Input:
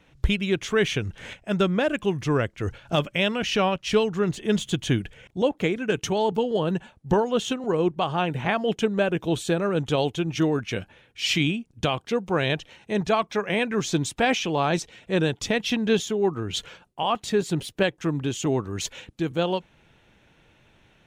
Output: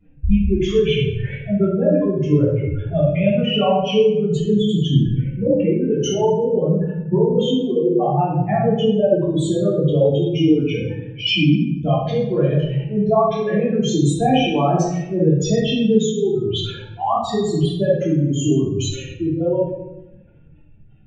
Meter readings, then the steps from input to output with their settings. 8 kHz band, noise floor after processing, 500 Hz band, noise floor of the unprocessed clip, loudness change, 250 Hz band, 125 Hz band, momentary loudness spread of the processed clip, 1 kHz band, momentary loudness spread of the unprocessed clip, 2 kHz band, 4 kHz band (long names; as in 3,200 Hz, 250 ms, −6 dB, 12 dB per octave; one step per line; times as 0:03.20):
+1.5 dB, −44 dBFS, +7.0 dB, −61 dBFS, +6.5 dB, +8.0 dB, +10.0 dB, 6 LU, +4.5 dB, 7 LU, −3.5 dB, +3.5 dB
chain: expanding power law on the bin magnitudes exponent 3.2
rectangular room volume 300 cubic metres, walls mixed, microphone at 3.1 metres
level −2.5 dB